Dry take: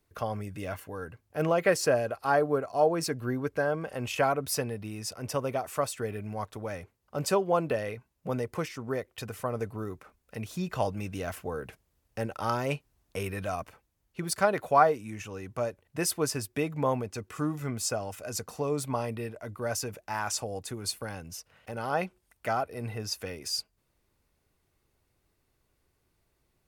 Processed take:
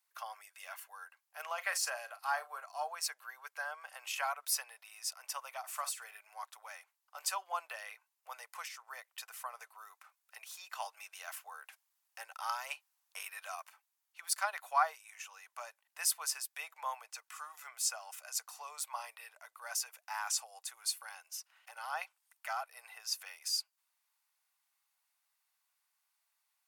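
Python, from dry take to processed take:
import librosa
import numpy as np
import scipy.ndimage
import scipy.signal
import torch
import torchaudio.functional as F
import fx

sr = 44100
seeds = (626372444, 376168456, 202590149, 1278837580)

y = fx.doubler(x, sr, ms=39.0, db=-13, at=(1.51, 2.64))
y = fx.doubler(y, sr, ms=49.0, db=-12.5, at=(5.63, 6.16), fade=0.02)
y = scipy.signal.sosfilt(scipy.signal.butter(6, 800.0, 'highpass', fs=sr, output='sos'), y)
y = fx.high_shelf(y, sr, hz=4500.0, db=6.5)
y = y * 10.0 ** (-6.0 / 20.0)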